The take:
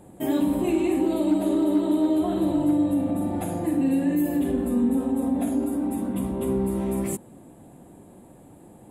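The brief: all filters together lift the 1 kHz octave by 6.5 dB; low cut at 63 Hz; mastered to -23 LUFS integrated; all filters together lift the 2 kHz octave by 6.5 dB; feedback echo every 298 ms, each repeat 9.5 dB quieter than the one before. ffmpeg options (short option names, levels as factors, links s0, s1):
-af "highpass=63,equalizer=f=1000:t=o:g=7.5,equalizer=f=2000:t=o:g=6,aecho=1:1:298|596|894|1192:0.335|0.111|0.0365|0.012"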